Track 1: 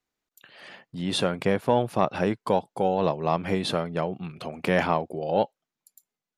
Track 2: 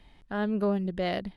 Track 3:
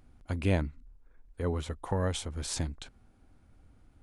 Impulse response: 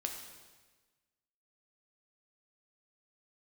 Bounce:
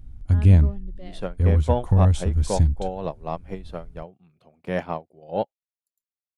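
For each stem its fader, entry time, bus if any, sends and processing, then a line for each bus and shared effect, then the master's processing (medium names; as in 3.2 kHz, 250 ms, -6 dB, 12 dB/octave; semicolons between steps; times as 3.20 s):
-3.0 dB, 0.00 s, no send, peaking EQ 610 Hz +3.5 dB 1.3 oct; bit crusher 12-bit; upward expansion 2.5:1, over -31 dBFS
-6.5 dB, 0.00 s, no send, expander on every frequency bin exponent 1.5; auto duck -13 dB, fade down 1.50 s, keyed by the third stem
-3.0 dB, 0.00 s, no send, tone controls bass +12 dB, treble +4 dB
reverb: none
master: bass shelf 150 Hz +10.5 dB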